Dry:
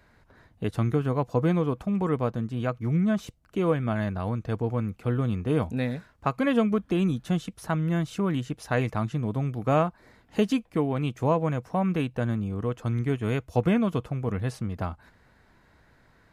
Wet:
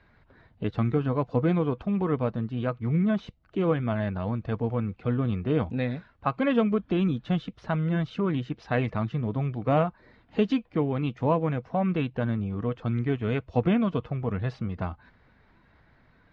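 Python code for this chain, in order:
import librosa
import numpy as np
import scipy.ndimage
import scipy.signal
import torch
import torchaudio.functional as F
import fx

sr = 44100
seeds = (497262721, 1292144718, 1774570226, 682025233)

y = fx.spec_quant(x, sr, step_db=15)
y = scipy.signal.sosfilt(scipy.signal.butter(4, 4200.0, 'lowpass', fs=sr, output='sos'), y)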